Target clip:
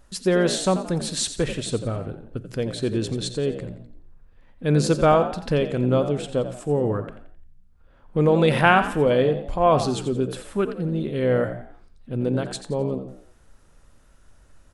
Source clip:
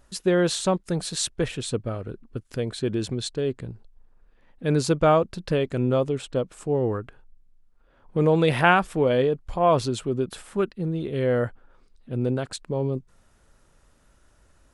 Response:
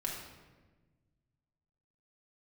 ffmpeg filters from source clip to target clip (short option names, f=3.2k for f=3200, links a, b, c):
-filter_complex "[0:a]asplit=5[a][b][c][d][e];[b]adelay=87,afreqshift=58,volume=-11.5dB[f];[c]adelay=174,afreqshift=116,volume=-19.9dB[g];[d]adelay=261,afreqshift=174,volume=-28.3dB[h];[e]adelay=348,afreqshift=232,volume=-36.7dB[i];[a][f][g][h][i]amix=inputs=5:normalize=0,asplit=2[j][k];[1:a]atrim=start_sample=2205,atrim=end_sample=6615,lowshelf=f=130:g=11.5[l];[k][l]afir=irnorm=-1:irlink=0,volume=-14dB[m];[j][m]amix=inputs=2:normalize=0"